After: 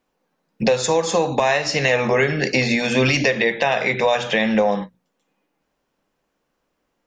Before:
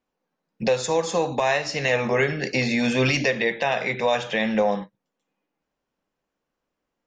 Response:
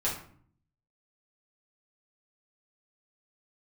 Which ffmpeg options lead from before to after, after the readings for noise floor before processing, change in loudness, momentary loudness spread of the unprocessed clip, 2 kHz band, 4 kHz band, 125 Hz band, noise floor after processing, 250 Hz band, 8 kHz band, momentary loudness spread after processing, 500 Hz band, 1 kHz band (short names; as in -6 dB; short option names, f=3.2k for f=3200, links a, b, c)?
-83 dBFS, +4.0 dB, 4 LU, +4.5 dB, +5.0 dB, +4.0 dB, -74 dBFS, +3.5 dB, +5.5 dB, 3 LU, +4.0 dB, +4.0 dB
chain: -af "acompressor=threshold=-26dB:ratio=2,bandreject=f=60:t=h:w=6,bandreject=f=120:t=h:w=6,bandreject=f=180:t=h:w=6,bandreject=f=240:t=h:w=6,volume=8.5dB"